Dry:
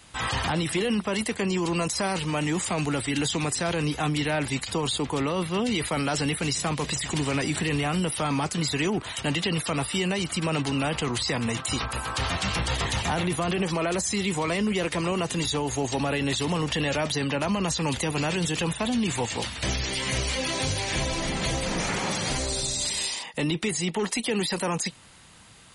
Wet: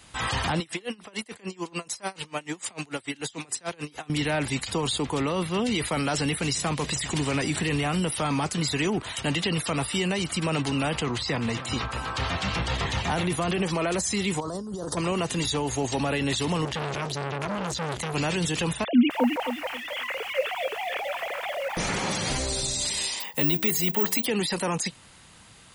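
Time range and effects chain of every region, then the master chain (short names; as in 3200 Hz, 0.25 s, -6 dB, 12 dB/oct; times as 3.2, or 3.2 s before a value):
0.6–4.1 HPF 300 Hz 6 dB/oct + dB-linear tremolo 6.8 Hz, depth 27 dB
11.02–13.1 HPF 42 Hz + air absorption 76 m + echo 0.281 s -14.5 dB
14.4–14.97 Chebyshev band-stop 1100–5000 Hz + negative-ratio compressor -33 dBFS
16.65–18.14 bell 140 Hz +8.5 dB 0.57 oct + core saturation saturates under 1400 Hz
18.84–21.77 sine-wave speech + LPF 2900 Hz + lo-fi delay 0.265 s, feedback 35%, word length 7-bit, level -5.5 dB
23.2–24.26 de-hum 63.13 Hz, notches 17 + careless resampling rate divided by 2×, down none, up zero stuff
whole clip: dry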